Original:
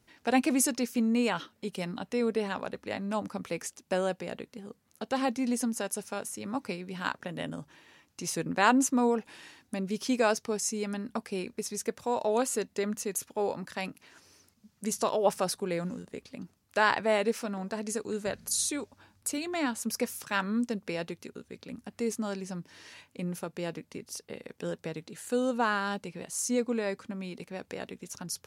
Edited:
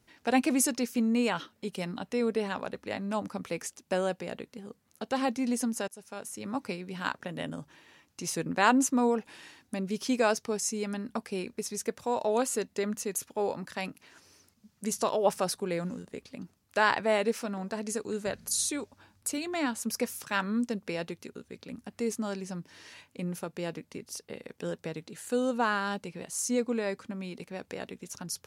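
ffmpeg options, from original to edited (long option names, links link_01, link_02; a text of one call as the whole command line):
ffmpeg -i in.wav -filter_complex "[0:a]asplit=2[link_01][link_02];[link_01]atrim=end=5.88,asetpts=PTS-STARTPTS,afade=type=out:start_time=5.876:duration=0.004:curve=hsin:silence=0.1[link_03];[link_02]atrim=start=5.88,asetpts=PTS-STARTPTS,afade=type=in:duration=0.57:silence=0.1[link_04];[link_03][link_04]concat=n=2:v=0:a=1" out.wav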